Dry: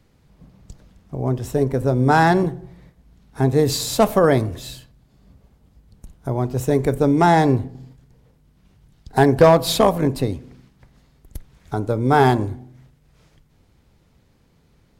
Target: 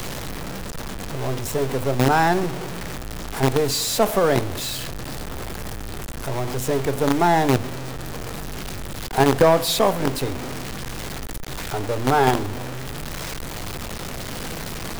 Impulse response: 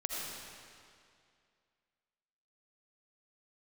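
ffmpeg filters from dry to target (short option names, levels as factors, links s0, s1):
-filter_complex "[0:a]aeval=exprs='val(0)+0.5*0.112*sgn(val(0))':c=same,acrossover=split=340|1800|2500[s0][s1][s2][s3];[s0]acrusher=bits=3:dc=4:mix=0:aa=0.000001[s4];[s4][s1][s2][s3]amix=inputs=4:normalize=0,volume=0.631"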